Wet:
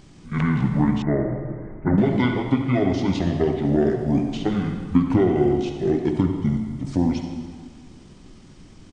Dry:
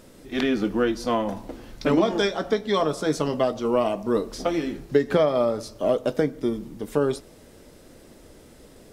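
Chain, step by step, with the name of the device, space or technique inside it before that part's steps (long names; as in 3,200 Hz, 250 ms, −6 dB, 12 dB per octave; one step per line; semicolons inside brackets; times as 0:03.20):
monster voice (pitch shifter −8.5 semitones; low-shelf EQ 170 Hz +5 dB; convolution reverb RT60 1.7 s, pre-delay 51 ms, DRR 4.5 dB)
0:01.02–0:01.98: Chebyshev low-pass filter 2,100 Hz, order 6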